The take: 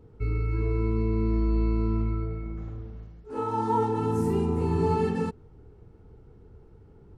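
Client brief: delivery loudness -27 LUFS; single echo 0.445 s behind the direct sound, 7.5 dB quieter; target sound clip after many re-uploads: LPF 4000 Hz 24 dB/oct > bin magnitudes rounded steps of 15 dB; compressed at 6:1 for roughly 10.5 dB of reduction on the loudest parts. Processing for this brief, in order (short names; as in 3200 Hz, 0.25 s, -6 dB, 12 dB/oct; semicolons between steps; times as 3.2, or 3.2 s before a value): compressor 6:1, threshold -33 dBFS; LPF 4000 Hz 24 dB/oct; echo 0.445 s -7.5 dB; bin magnitudes rounded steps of 15 dB; gain +11 dB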